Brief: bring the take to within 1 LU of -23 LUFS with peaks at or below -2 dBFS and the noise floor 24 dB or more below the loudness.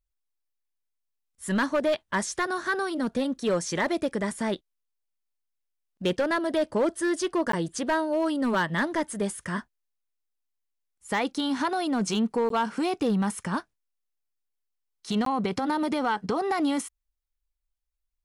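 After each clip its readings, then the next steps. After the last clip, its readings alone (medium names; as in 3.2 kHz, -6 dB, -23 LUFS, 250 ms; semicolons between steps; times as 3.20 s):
clipped samples 0.9%; clipping level -19.0 dBFS; dropouts 3; longest dropout 13 ms; loudness -27.5 LUFS; peak level -19.0 dBFS; loudness target -23.0 LUFS
-> clip repair -19 dBFS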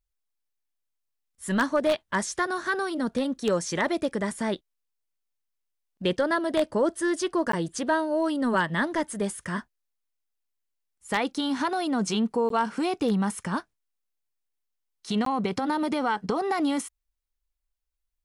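clipped samples 0.0%; dropouts 3; longest dropout 13 ms
-> interpolate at 7.52/12.49/15.25 s, 13 ms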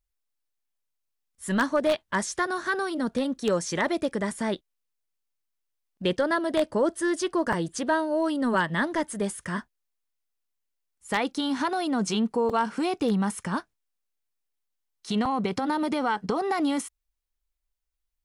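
dropouts 0; loudness -27.0 LUFS; peak level -10.0 dBFS; loudness target -23.0 LUFS
-> trim +4 dB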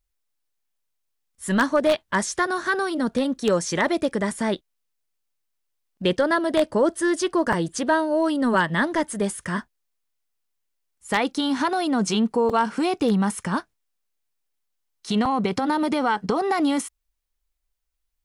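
loudness -23.0 LUFS; peak level -6.0 dBFS; noise floor -76 dBFS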